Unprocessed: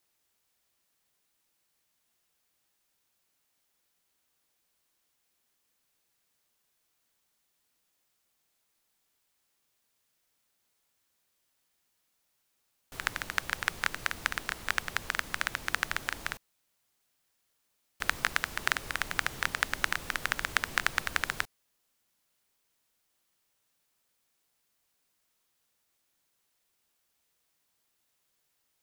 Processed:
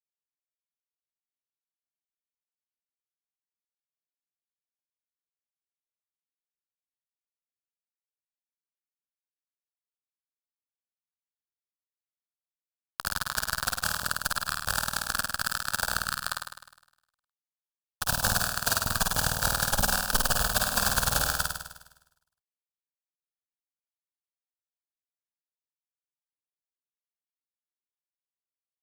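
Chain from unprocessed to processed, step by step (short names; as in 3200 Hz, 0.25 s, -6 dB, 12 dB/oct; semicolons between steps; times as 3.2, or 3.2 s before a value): per-bin expansion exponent 2; fuzz box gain 44 dB, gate -45 dBFS; fixed phaser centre 850 Hz, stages 4; on a send: flutter echo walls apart 8.8 m, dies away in 0.98 s; on the sum: gain +2 dB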